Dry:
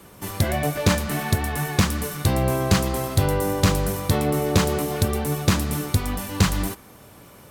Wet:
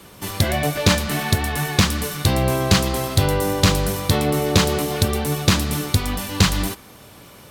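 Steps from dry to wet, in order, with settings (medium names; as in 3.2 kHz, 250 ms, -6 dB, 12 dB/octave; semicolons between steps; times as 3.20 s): peaking EQ 3.8 kHz +6 dB 1.5 oct; trim +2 dB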